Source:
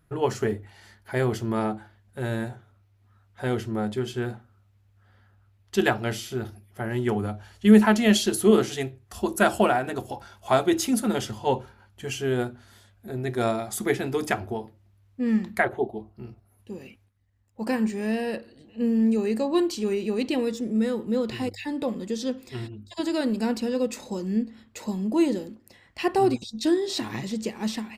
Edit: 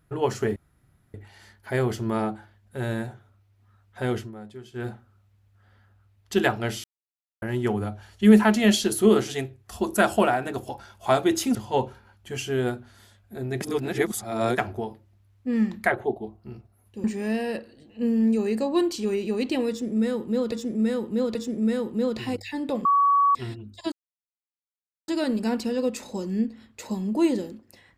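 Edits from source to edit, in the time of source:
0.56 insert room tone 0.58 s
3.61–4.28 dip -13.5 dB, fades 0.13 s
6.26–6.84 mute
10.97–11.28 cut
13.34–14.31 reverse
16.77–17.83 cut
20.48–21.31 loop, 3 plays
21.98–22.48 bleep 1130 Hz -16 dBFS
23.05 insert silence 1.16 s

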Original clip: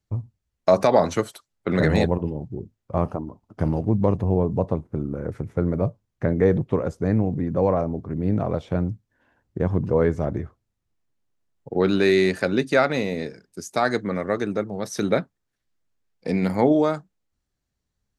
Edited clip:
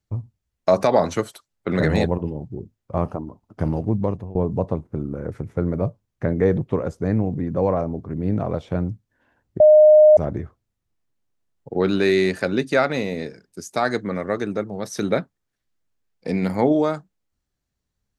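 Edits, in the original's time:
3.77–4.35 fade out equal-power, to -22 dB
9.6–10.17 bleep 612 Hz -7 dBFS

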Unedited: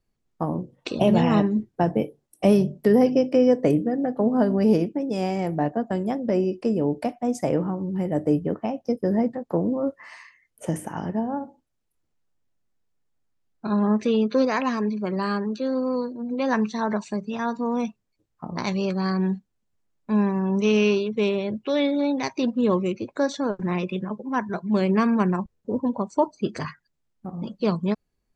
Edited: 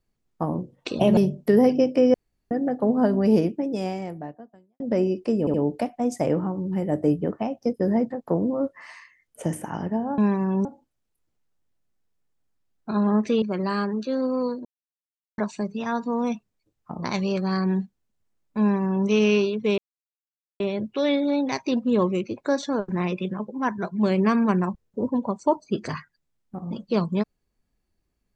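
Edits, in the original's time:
1.17–2.54 cut
3.51–3.88 room tone
5.07–6.17 fade out quadratic
6.77 stutter 0.07 s, 3 plays
14.18–14.95 cut
16.18–16.91 mute
20.13–20.6 copy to 11.41
21.31 insert silence 0.82 s

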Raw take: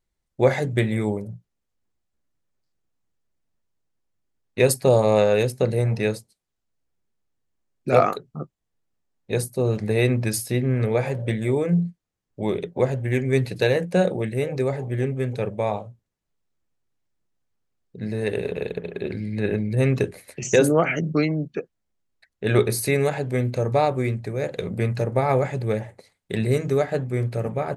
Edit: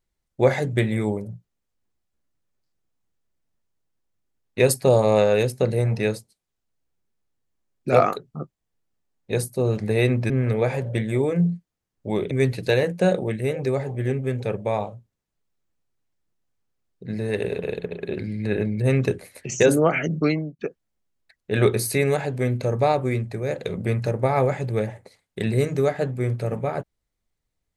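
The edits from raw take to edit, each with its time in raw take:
10.3–10.63 cut
12.64–13.24 cut
21.26–21.52 fade out

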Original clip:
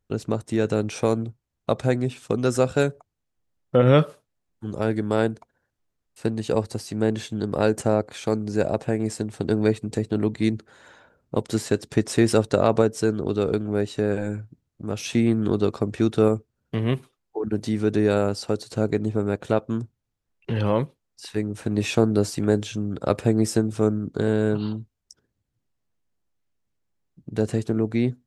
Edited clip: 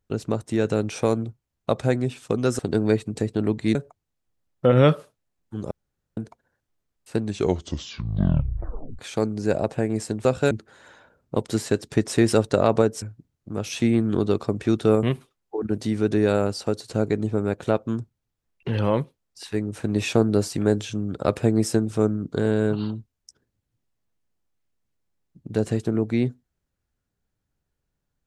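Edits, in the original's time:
2.59–2.85 swap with 9.35–10.51
4.81–5.27 room tone
6.3 tape stop 1.79 s
13.02–14.35 cut
16.36–16.85 cut

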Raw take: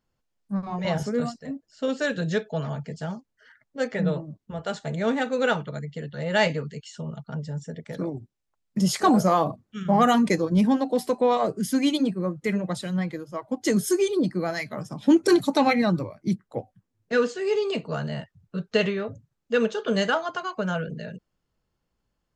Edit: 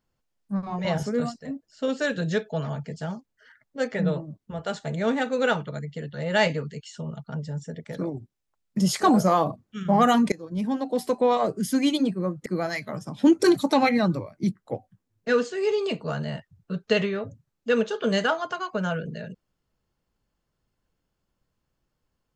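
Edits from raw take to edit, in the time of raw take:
10.32–11.12 fade in linear, from -22.5 dB
12.46–14.3 cut

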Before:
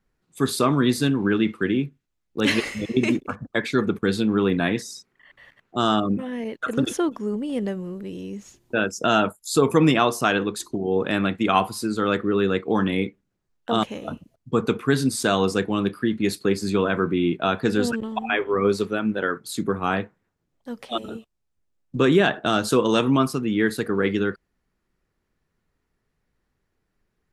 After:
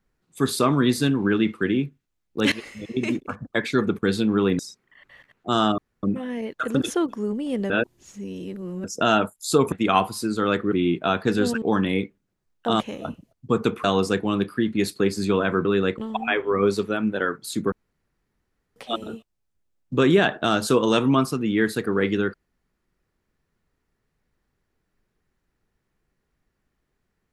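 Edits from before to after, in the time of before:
2.52–3.49 fade in, from -15.5 dB
4.59–4.87 cut
6.06 insert room tone 0.25 s
7.73–8.87 reverse
9.75–11.32 cut
12.32–12.65 swap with 17.1–18
14.87–15.29 cut
19.74–20.78 room tone

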